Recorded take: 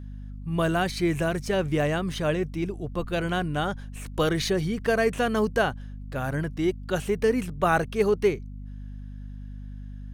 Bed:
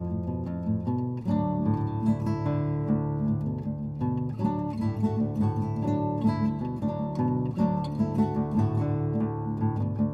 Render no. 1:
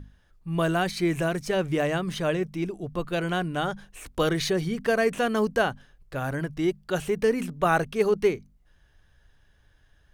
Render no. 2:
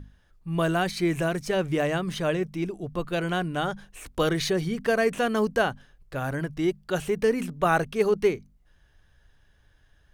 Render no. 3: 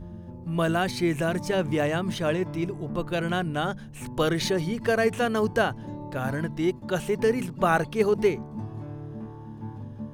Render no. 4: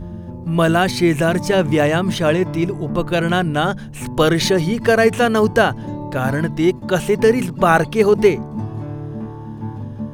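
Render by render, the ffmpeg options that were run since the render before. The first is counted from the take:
-af "bandreject=f=50:t=h:w=6,bandreject=f=100:t=h:w=6,bandreject=f=150:t=h:w=6,bandreject=f=200:t=h:w=6,bandreject=f=250:t=h:w=6"
-af anull
-filter_complex "[1:a]volume=0.299[s0];[0:a][s0]amix=inputs=2:normalize=0"
-af "volume=2.99,alimiter=limit=0.794:level=0:latency=1"

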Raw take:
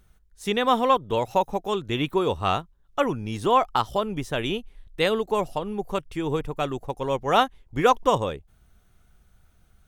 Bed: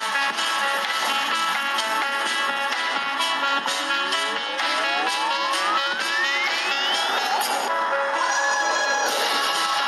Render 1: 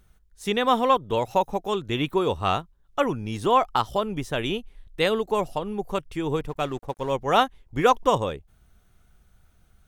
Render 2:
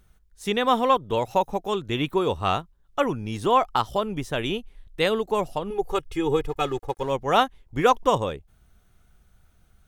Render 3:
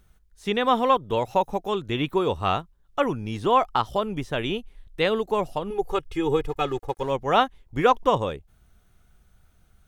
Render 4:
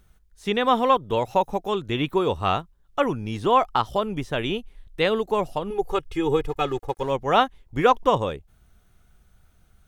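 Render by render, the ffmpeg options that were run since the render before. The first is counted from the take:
-filter_complex "[0:a]asettb=1/sr,asplit=3[s0][s1][s2];[s0]atrim=end=6.404[s3];[s1]atrim=start=6.4:end=7.12,asetpts=PTS-STARTPTS,afade=t=in:d=0.004:c=qsin,afade=t=out:st=0.716:d=0.004:c=qsin,aeval=exprs='sgn(val(0))*max(abs(val(0))-0.00447,0)':c=same[s4];[s2]atrim=start=7.116[s5];[s3][s4]acrossfade=d=0.004:c1=hsin:c2=qsin[s6];[s6][s5]acrossfade=d=0.004:c1=qsin:c2=hsin"
-filter_complex "[0:a]asettb=1/sr,asplit=3[s0][s1][s2];[s0]atrim=end=5.704[s3];[s1]atrim=start=5.7:end=7.03,asetpts=PTS-STARTPTS,afade=t=in:d=0.004:c=qsin,afade=t=out:st=1.326:d=0.004:c=qsin,aecho=1:1:2.4:0.84,atrim=end_sample=58653[s4];[s2]atrim=start=7.026[s5];[s3][s4]acrossfade=d=0.004:c1=hsin:c2=qsin[s6];[s6][s5]acrossfade=d=0.004:c1=qsin:c2=hsin"
-filter_complex "[0:a]acrossover=split=4800[s0][s1];[s1]acompressor=threshold=0.00282:ratio=4:attack=1:release=60[s2];[s0][s2]amix=inputs=2:normalize=0"
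-af "volume=1.12"

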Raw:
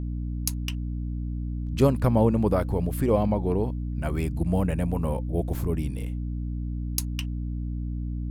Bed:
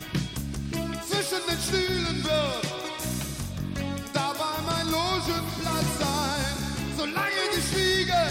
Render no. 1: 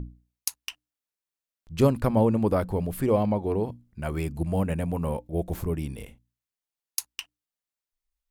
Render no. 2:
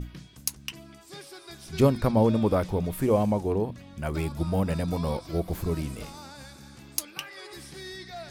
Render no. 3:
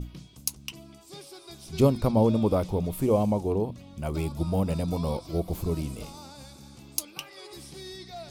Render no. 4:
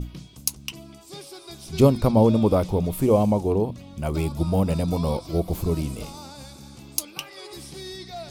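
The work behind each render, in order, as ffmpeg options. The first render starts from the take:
-af "bandreject=f=60:t=h:w=6,bandreject=f=120:t=h:w=6,bandreject=f=180:t=h:w=6,bandreject=f=240:t=h:w=6,bandreject=f=300:t=h:w=6"
-filter_complex "[1:a]volume=0.141[s0];[0:a][s0]amix=inputs=2:normalize=0"
-af "equalizer=f=1700:t=o:w=0.62:g=-11.5"
-af "volume=1.68,alimiter=limit=0.708:level=0:latency=1"

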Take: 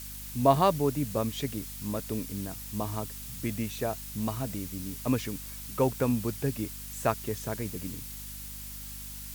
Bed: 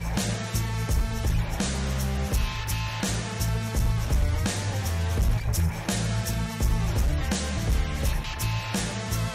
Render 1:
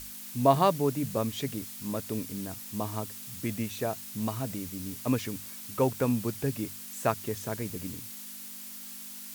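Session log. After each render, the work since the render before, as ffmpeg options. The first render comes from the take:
-af "bandreject=f=50:t=h:w=6,bandreject=f=100:t=h:w=6,bandreject=f=150:t=h:w=6"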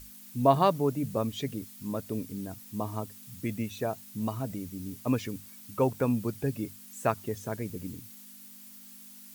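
-af "afftdn=nr=9:nf=-43"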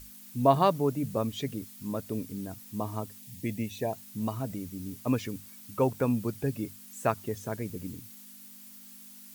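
-filter_complex "[0:a]asettb=1/sr,asplit=3[s0][s1][s2];[s0]atrim=end=3.204[s3];[s1]atrim=start=3.2:end=3.93,asetpts=PTS-STARTPTS,afade=t=in:d=0.004:c=qsin,afade=t=out:st=0.726:d=0.004:c=qsin,asuperstop=centerf=1300:order=8:qfactor=2.1[s4];[s2]atrim=start=3.926[s5];[s3][s4]acrossfade=d=0.004:c1=hsin:c2=qsin[s6];[s6][s5]acrossfade=d=0.004:c1=qsin:c2=hsin"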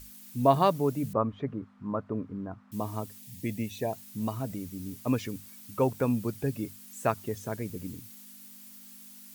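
-filter_complex "[0:a]asettb=1/sr,asplit=3[s0][s1][s2];[s0]atrim=end=1.134[s3];[s1]atrim=start=1.13:end=2.72,asetpts=PTS-STARTPTS,afade=t=in:d=0.004:c=qsin,afade=t=out:st=1.586:d=0.004:c=qsin,lowpass=f=1200:t=q:w=2.7[s4];[s2]atrim=start=2.716[s5];[s3][s4]acrossfade=d=0.004:c1=hsin:c2=qsin[s6];[s6][s5]acrossfade=d=0.004:c1=qsin:c2=hsin"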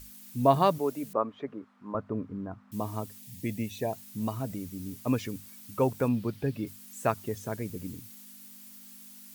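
-filter_complex "[0:a]asettb=1/sr,asplit=3[s0][s1][s2];[s0]atrim=end=0.784[s3];[s1]atrim=start=0.78:end=1.95,asetpts=PTS-STARTPTS,afade=t=in:d=0.004:c=qsin,afade=t=out:st=1.166:d=0.004:c=qsin,highpass=310[s4];[s2]atrim=start=1.946[s5];[s3][s4]acrossfade=d=0.004:c1=hsin:c2=qsin[s6];[s6][s5]acrossfade=d=0.004:c1=qsin:c2=hsin,asettb=1/sr,asplit=3[s7][s8][s9];[s7]atrim=end=6.084[s10];[s8]atrim=start=6.08:end=6.67,asetpts=PTS-STARTPTS,afade=t=in:d=0.004:c=qsin,afade=t=out:st=0.586:d=0.004:c=qsin,highshelf=f=5400:t=q:w=1.5:g=-7.5[s11];[s9]atrim=start=6.666[s12];[s10][s11]acrossfade=d=0.004:c1=hsin:c2=qsin[s13];[s13][s12]acrossfade=d=0.004:c1=qsin:c2=hsin"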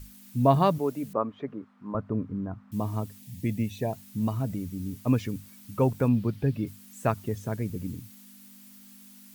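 -af "bass=f=250:g=7,treble=f=4000:g=-3"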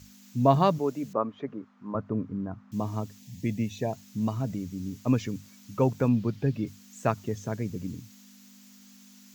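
-af "highpass=95,highshelf=f=7900:t=q:w=3:g=-6"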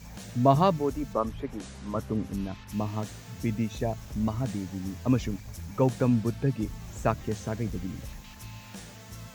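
-filter_complex "[1:a]volume=0.158[s0];[0:a][s0]amix=inputs=2:normalize=0"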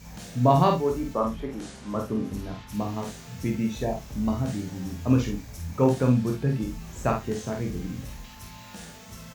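-filter_complex "[0:a]asplit=2[s0][s1];[s1]adelay=23,volume=0.501[s2];[s0][s2]amix=inputs=2:normalize=0,aecho=1:1:49|100:0.596|0.106"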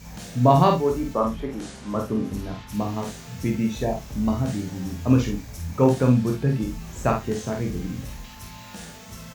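-af "volume=1.41"

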